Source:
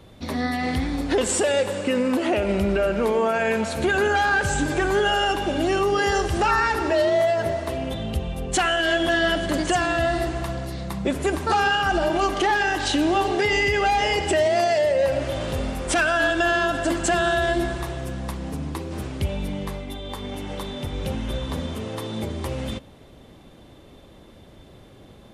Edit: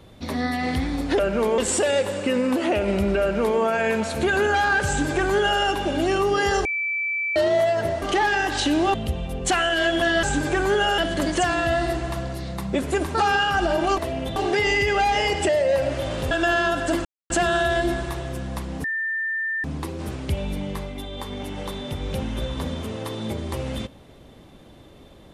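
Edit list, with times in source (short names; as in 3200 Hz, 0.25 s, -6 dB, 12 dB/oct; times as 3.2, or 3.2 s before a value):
2.82–3.21 copy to 1.19
4.48–5.23 copy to 9.3
6.26–6.97 bleep 2320 Hz -22.5 dBFS
7.63–8.01 swap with 12.3–13.22
14.35–14.79 cut
15.61–16.28 cut
17.02 insert silence 0.25 s
18.56 add tone 1790 Hz -23 dBFS 0.80 s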